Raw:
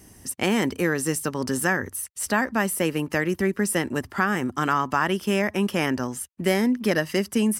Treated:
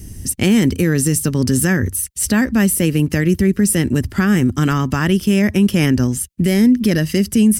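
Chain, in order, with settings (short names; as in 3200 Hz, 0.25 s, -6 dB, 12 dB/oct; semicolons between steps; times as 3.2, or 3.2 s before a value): passive tone stack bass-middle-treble 10-0-1; maximiser +35.5 dB; gain -5 dB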